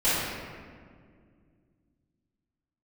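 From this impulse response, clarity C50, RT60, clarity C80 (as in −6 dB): −3.5 dB, 2.0 s, −0.5 dB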